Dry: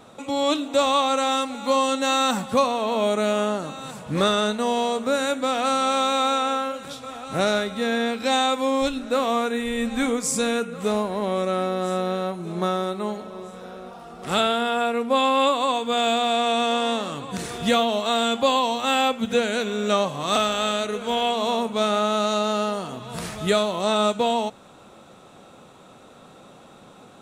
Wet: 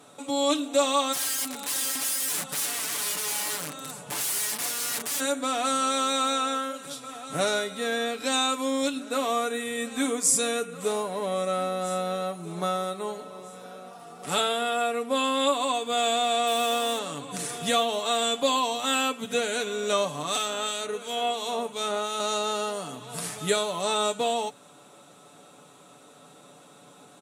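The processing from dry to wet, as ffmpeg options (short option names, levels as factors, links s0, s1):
-filter_complex "[0:a]asplit=3[s0][s1][s2];[s0]afade=t=out:st=1.12:d=0.02[s3];[s1]aeval=exprs='(mod(17.8*val(0)+1,2)-1)/17.8':c=same,afade=t=in:st=1.12:d=0.02,afade=t=out:st=5.19:d=0.02[s4];[s2]afade=t=in:st=5.19:d=0.02[s5];[s3][s4][s5]amix=inputs=3:normalize=0,asettb=1/sr,asplit=3[s6][s7][s8];[s6]atrim=end=16.474[s9];[s7]atrim=start=16.47:end=16.99,asetpts=PTS-STARTPTS,afade=t=in:d=0.004:c=qsin,afade=t=out:st=0.516:d=0.004:c=qsin,acrusher=bits=5:mode=log:mix=0:aa=0.000001[s10];[s8]atrim=start=16.986[s11];[s9][s10]acrossfade=d=0.004:c1=hsin:c2=qsin[s12];[s12][s11]acrossfade=d=0.004:c1=qsin:c2=hsin,asettb=1/sr,asplit=3[s13][s14][s15];[s13]atrim=end=20.224[s16];[s14]atrim=start=20.22:end=22.2,asetpts=PTS-STARTPTS,afade=t=in:d=0.004:c=qsin,afade=t=out:st=1.976:d=0.004:c=qsin,acrossover=split=2100[s17][s18];[s17]aeval=exprs='val(0)*(1-0.5/2+0.5/2*cos(2*PI*2.9*n/s))':c=same[s19];[s18]aeval=exprs='val(0)*(1-0.5/2-0.5/2*cos(2*PI*2.9*n/s))':c=same[s20];[s19][s20]amix=inputs=2:normalize=0[s21];[s15]atrim=start=22.196[s22];[s16][s21]acrossfade=d=0.004:c1=hsin:c2=qsin[s23];[s23][s22]acrossfade=d=0.004:c1=qsin:c2=hsin,highpass=150,equalizer=f=10000:t=o:w=1.3:g=11,aecho=1:1:6.9:0.57,volume=0.531"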